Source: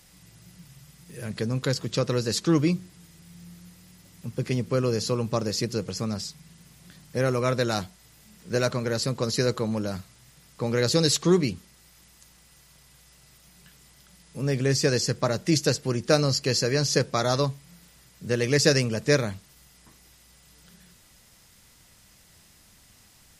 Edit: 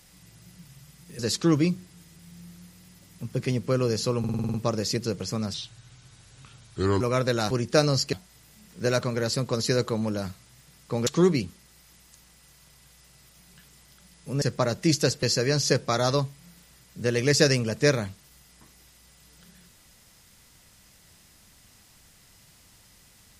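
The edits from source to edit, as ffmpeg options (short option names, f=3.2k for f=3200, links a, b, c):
-filter_complex "[0:a]asplit=16[a][b][c][d][e][f][g][h][i][j][k][l][m][n][o][p];[a]atrim=end=1.192[q];[b]atrim=start=2.218:end=5.272[r];[c]atrim=start=5.218:end=5.272[s];[d]atrim=start=5.218:end=5.272[t];[e]atrim=start=5.218:end=5.272[u];[f]atrim=start=5.218:end=5.272[v];[g]atrim=start=5.218:end=5.272[w];[h]atrim=start=5.218:end=5.272[x];[i]atrim=start=5.218:end=6.224[y];[j]atrim=start=6.22:end=7.32,asetpts=PTS-STARTPTS,asetrate=33075,aresample=44100[z];[k]atrim=start=7.316:end=7.822[aa];[l]atrim=start=15.858:end=16.482[ab];[m]atrim=start=7.818:end=10.762[ac];[n]atrim=start=11.148:end=14.502[ad];[o]atrim=start=15.048:end=15.862[ae];[p]atrim=start=16.478[af];[q][r]acrossfade=d=0.004:c1=hsin:c2=hsin[ag];[ag][s]acrossfade=d=0.004:c1=hsin:c2=hsin[ah];[ah][t]acrossfade=d=0.004:c1=hsin:c2=hsin[ai];[ai][u]acrossfade=d=0.004:c1=hsin:c2=hsin[aj];[aj][v]acrossfade=d=0.004:c1=hsin:c2=hsin[ak];[ak][w]acrossfade=d=0.004:c1=hsin:c2=hsin[al];[al][x]acrossfade=d=0.004:c1=hsin:c2=hsin[am];[am][y]acrossfade=d=0.004:c1=hsin:c2=hsin[an];[an][z]acrossfade=d=0.004:c1=hsin:c2=hsin[ao];[ao][aa]acrossfade=d=0.004:c1=hsin:c2=hsin[ap];[ap][ab]acrossfade=d=0.004:c1=hsin:c2=hsin[aq];[aq][ac]acrossfade=d=0.004:c1=hsin:c2=hsin[ar];[ar][ad]acrossfade=d=0.004:c1=hsin:c2=hsin[as];[as][ae]acrossfade=d=0.004:c1=hsin:c2=hsin[at];[at][af]acrossfade=d=0.004:c1=hsin:c2=hsin"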